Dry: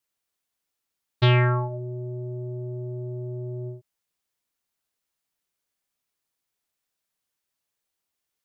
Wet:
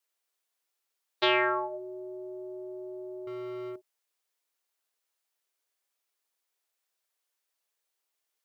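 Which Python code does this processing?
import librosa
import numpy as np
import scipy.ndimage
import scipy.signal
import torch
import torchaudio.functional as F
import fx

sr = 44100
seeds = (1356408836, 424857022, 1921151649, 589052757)

y = scipy.signal.sosfilt(scipy.signal.butter(4, 360.0, 'highpass', fs=sr, output='sos'), x)
y = fx.leveller(y, sr, passes=3, at=(3.27, 3.76))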